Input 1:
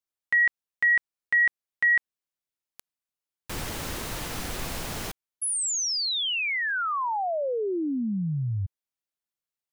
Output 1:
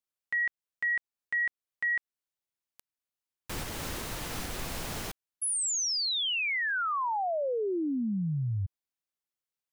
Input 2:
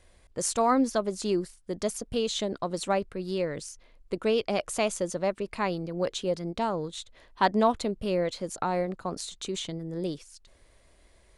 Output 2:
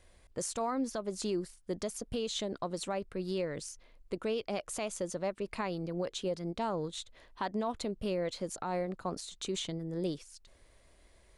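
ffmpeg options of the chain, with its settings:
ffmpeg -i in.wav -af "alimiter=limit=-22.5dB:level=0:latency=1:release=218,volume=-2.5dB" out.wav

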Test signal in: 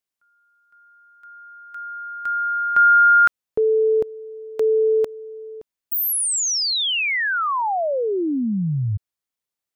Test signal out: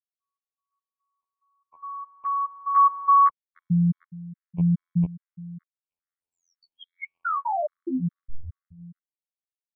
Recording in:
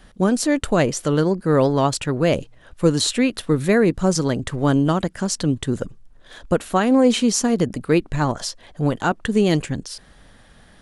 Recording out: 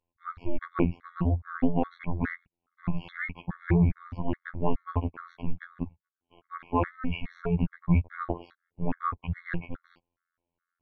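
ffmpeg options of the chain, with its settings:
ffmpeg -i in.wav -af "agate=range=-26dB:threshold=-41dB:ratio=16:release=27:detection=rms,highpass=frequency=200:width_type=q:width=0.5412,highpass=frequency=200:width_type=q:width=1.307,lowpass=frequency=2600:width_type=q:width=0.5176,lowpass=frequency=2600:width_type=q:width=0.7071,lowpass=frequency=2600:width_type=q:width=1.932,afreqshift=-280,afftfilt=real='hypot(re,im)*cos(PI*b)':imag='0':win_size=2048:overlap=0.75,afftfilt=real='re*gt(sin(2*PI*2.4*pts/sr)*(1-2*mod(floor(b*sr/1024/1100),2)),0)':imag='im*gt(sin(2*PI*2.4*pts/sr)*(1-2*mod(floor(b*sr/1024/1100),2)),0)':win_size=1024:overlap=0.75" out.wav

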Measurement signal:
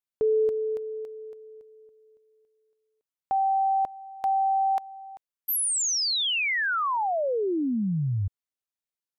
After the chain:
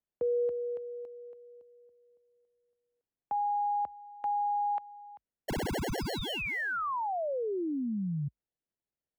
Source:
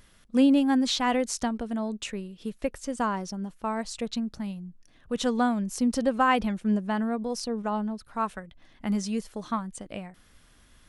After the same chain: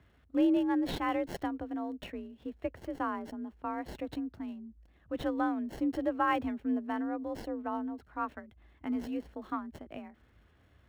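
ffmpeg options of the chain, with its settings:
ffmpeg -i in.wav -filter_complex "[0:a]afreqshift=46,acrossover=split=3200[link_01][link_02];[link_02]acrusher=samples=36:mix=1:aa=0.000001[link_03];[link_01][link_03]amix=inputs=2:normalize=0,volume=-6.5dB" out.wav

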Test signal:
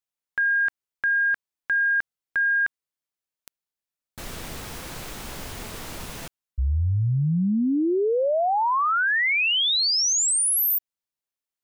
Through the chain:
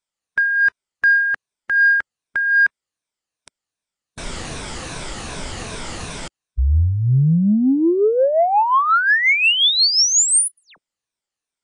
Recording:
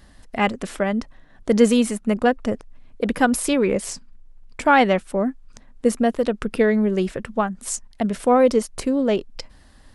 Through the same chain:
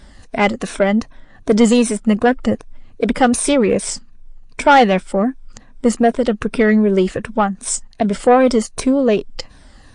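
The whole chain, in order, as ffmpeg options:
ffmpeg -i in.wav -af "afftfilt=real='re*pow(10,8/40*sin(2*PI*(1.6*log(max(b,1)*sr/1024/100)/log(2)-(-2.6)*(pts-256)/sr)))':imag='im*pow(10,8/40*sin(2*PI*(1.6*log(max(b,1)*sr/1024/100)/log(2)-(-2.6)*(pts-256)/sr)))':win_size=1024:overlap=0.75,acontrast=88,volume=-1dB" -ar 22050 -c:a libmp3lame -b:a 48k out.mp3

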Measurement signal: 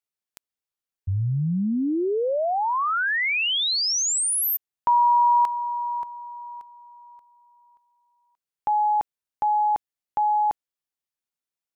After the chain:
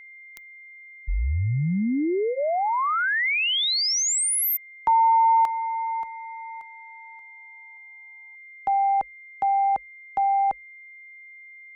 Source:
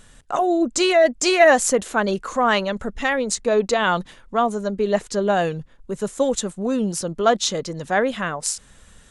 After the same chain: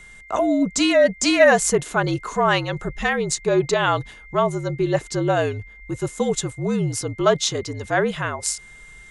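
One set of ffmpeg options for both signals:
ffmpeg -i in.wav -af "afreqshift=-53,aeval=exprs='val(0)+0.00708*sin(2*PI*2100*n/s)':channel_layout=same,bandreject=frequency=520:width=13" out.wav

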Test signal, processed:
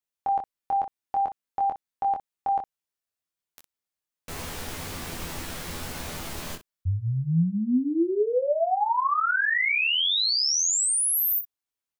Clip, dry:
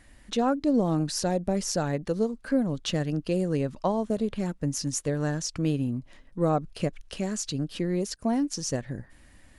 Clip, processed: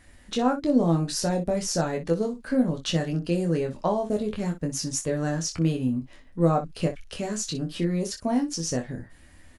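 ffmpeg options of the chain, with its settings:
ffmpeg -i in.wav -af "aecho=1:1:12|24|61:0.422|0.596|0.251" out.wav

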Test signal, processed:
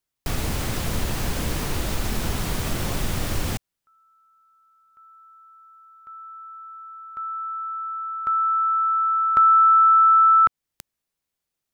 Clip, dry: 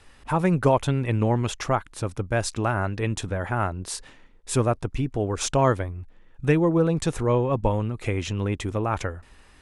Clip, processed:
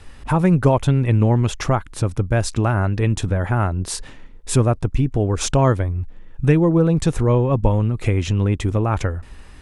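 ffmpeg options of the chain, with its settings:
ffmpeg -i in.wav -filter_complex "[0:a]lowshelf=frequency=260:gain=8.5,asplit=2[link_01][link_02];[link_02]acompressor=threshold=-25dB:ratio=6,volume=2dB[link_03];[link_01][link_03]amix=inputs=2:normalize=0,volume=-1.5dB" out.wav

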